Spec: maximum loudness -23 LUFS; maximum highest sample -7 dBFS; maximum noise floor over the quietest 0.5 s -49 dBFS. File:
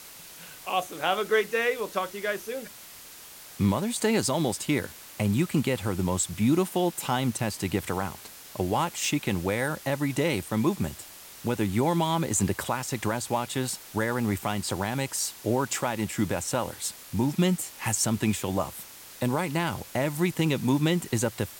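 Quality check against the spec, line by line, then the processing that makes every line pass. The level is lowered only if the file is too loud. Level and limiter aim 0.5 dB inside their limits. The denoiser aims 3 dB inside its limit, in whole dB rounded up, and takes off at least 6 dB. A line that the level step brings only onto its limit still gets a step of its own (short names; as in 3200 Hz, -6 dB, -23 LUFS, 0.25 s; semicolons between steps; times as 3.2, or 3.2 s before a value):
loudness -27.5 LUFS: OK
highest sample -11.0 dBFS: OK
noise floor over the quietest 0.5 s -46 dBFS: fail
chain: denoiser 6 dB, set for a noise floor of -46 dBFS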